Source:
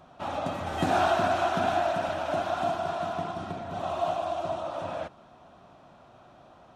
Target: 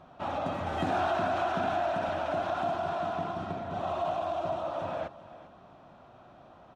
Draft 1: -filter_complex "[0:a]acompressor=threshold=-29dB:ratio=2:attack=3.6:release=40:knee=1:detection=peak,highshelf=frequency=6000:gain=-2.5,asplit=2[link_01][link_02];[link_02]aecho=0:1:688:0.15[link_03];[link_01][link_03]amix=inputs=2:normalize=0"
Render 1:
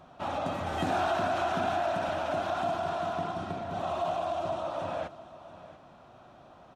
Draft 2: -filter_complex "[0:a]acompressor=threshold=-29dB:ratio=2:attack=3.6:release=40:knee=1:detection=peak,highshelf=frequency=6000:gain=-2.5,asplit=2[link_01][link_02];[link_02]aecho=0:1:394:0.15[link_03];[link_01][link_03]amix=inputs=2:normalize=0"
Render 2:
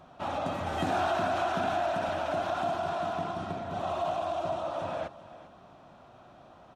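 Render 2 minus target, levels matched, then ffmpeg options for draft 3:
8,000 Hz band +5.5 dB
-filter_complex "[0:a]acompressor=threshold=-29dB:ratio=2:attack=3.6:release=40:knee=1:detection=peak,highshelf=frequency=6000:gain=-13,asplit=2[link_01][link_02];[link_02]aecho=0:1:394:0.15[link_03];[link_01][link_03]amix=inputs=2:normalize=0"

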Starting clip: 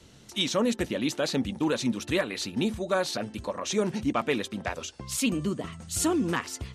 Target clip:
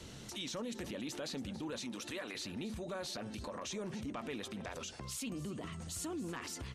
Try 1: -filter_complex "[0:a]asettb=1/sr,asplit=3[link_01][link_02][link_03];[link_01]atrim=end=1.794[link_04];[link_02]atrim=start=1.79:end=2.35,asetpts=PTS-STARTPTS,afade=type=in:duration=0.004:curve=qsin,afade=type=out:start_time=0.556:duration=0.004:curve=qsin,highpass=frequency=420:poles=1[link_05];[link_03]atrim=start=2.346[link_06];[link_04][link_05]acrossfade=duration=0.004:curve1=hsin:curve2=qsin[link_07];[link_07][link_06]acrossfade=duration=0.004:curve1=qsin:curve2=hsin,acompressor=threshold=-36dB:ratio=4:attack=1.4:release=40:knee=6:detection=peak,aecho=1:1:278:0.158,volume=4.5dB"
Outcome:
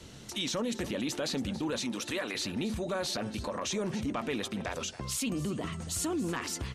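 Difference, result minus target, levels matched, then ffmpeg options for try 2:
downward compressor: peak gain reduction −8.5 dB
-filter_complex "[0:a]asettb=1/sr,asplit=3[link_01][link_02][link_03];[link_01]atrim=end=1.794[link_04];[link_02]atrim=start=1.79:end=2.35,asetpts=PTS-STARTPTS,afade=type=in:duration=0.004:curve=qsin,afade=type=out:start_time=0.556:duration=0.004:curve=qsin,highpass=frequency=420:poles=1[link_05];[link_03]atrim=start=2.346[link_06];[link_04][link_05]acrossfade=duration=0.004:curve1=hsin:curve2=qsin[link_07];[link_07][link_06]acrossfade=duration=0.004:curve1=qsin:curve2=hsin,acompressor=threshold=-47.5dB:ratio=4:attack=1.4:release=40:knee=6:detection=peak,aecho=1:1:278:0.158,volume=4.5dB"

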